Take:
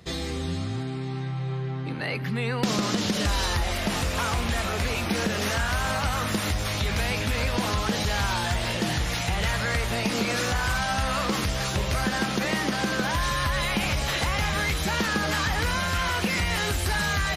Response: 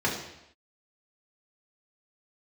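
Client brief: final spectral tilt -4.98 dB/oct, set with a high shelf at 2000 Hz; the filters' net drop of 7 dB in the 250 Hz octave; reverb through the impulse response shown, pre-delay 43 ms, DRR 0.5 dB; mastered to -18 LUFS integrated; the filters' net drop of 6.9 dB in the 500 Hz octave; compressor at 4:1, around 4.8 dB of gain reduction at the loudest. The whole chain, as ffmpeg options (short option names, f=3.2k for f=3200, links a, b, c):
-filter_complex "[0:a]equalizer=f=250:t=o:g=-8.5,equalizer=f=500:t=o:g=-6,highshelf=f=2k:g=-7,acompressor=threshold=-29dB:ratio=4,asplit=2[a][b];[1:a]atrim=start_sample=2205,adelay=43[c];[b][c]afir=irnorm=-1:irlink=0,volume=-12.5dB[d];[a][d]amix=inputs=2:normalize=0,volume=11.5dB"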